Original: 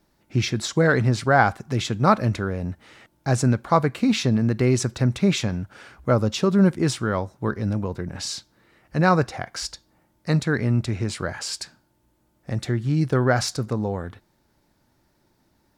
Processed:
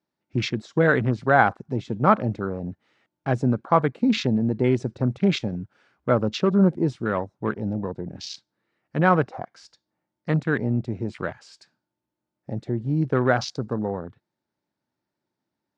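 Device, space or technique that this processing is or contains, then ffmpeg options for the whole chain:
over-cleaned archive recording: -af "highpass=140,lowpass=5500,afwtdn=0.0251"

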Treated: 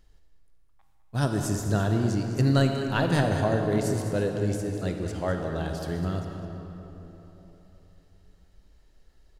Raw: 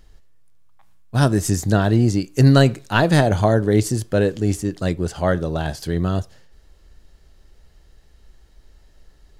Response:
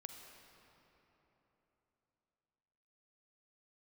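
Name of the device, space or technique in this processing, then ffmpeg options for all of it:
cave: -filter_complex "[0:a]aecho=1:1:205:0.251[s0];[1:a]atrim=start_sample=2205[s1];[s0][s1]afir=irnorm=-1:irlink=0,volume=0.668"

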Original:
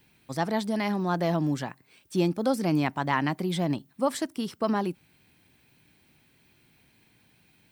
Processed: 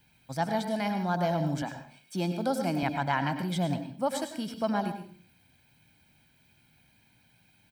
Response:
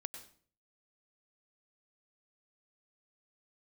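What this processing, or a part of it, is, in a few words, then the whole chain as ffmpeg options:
microphone above a desk: -filter_complex "[0:a]asettb=1/sr,asplit=3[s0][s1][s2];[s0]atrim=end=1.624[s3];[s1]atrim=start=1.62:end=2.83,asetpts=PTS-STARTPTS,afade=t=in:d=0.004:c=qsin,afade=t=out:st=1.206:d=0.004:c=qsin,highpass=f=170:w=0.5412,highpass=f=170:w=1.3066[s4];[s2]atrim=start=2.826[s5];[s3][s4]acrossfade=d=0.004:c1=hsin:c2=qsin[s6];[s6][s5]acrossfade=d=0.004:c1=qsin:c2=hsin,aecho=1:1:1.3:0.53[s7];[1:a]atrim=start_sample=2205[s8];[s7][s8]afir=irnorm=-1:irlink=0"

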